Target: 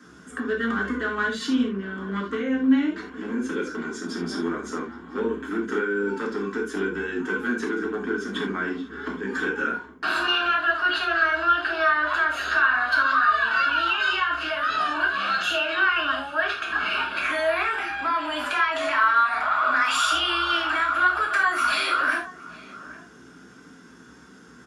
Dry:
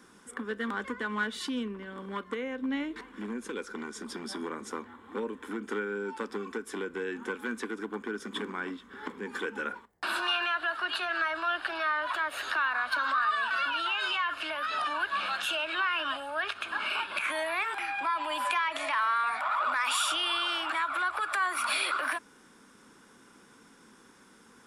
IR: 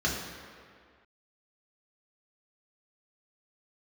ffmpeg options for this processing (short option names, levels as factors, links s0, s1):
-filter_complex "[0:a]asplit=2[s0][s1];[s1]adelay=816.3,volume=0.141,highshelf=f=4000:g=-18.4[s2];[s0][s2]amix=inputs=2:normalize=0[s3];[1:a]atrim=start_sample=2205,afade=t=out:st=0.14:d=0.01,atrim=end_sample=6615[s4];[s3][s4]afir=irnorm=-1:irlink=0,volume=0.75"